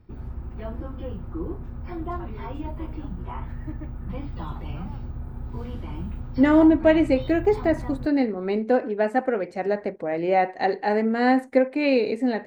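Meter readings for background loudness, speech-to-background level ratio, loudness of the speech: −35.0 LKFS, 13.0 dB, −22.0 LKFS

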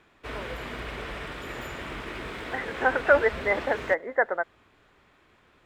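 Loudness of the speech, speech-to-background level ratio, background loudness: −26.0 LKFS, 10.0 dB, −36.0 LKFS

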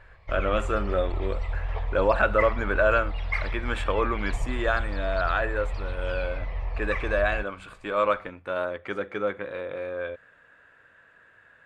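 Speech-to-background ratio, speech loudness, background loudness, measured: 5.0 dB, −28.0 LKFS, −33.0 LKFS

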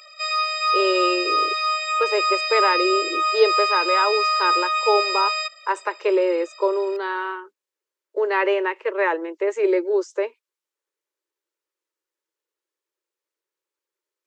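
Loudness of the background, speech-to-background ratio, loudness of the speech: −20.5 LKFS, −3.0 dB, −23.5 LKFS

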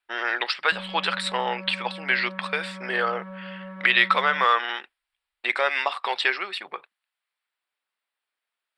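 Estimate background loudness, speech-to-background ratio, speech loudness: −39.5 LKFS, 15.5 dB, −24.0 LKFS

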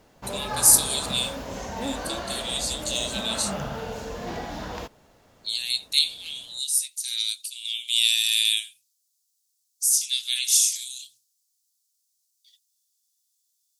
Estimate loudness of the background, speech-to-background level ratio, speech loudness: −33.5 LKFS, 11.0 dB, −22.5 LKFS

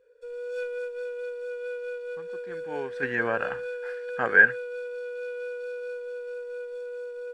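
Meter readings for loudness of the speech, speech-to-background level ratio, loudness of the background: −23.5 LKFS, 12.0 dB, −35.5 LKFS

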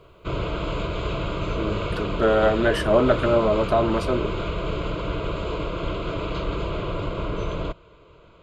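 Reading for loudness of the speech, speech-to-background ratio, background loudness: −22.0 LKFS, 6.5 dB, −28.5 LKFS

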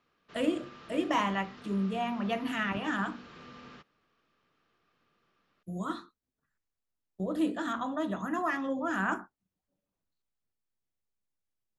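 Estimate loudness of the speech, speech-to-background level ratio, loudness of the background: −33.0 LKFS, 17.5 dB, −50.5 LKFS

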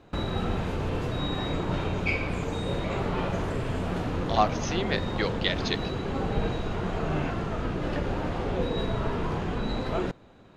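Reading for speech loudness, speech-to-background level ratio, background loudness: −29.5 LKFS, 1.0 dB, −30.5 LKFS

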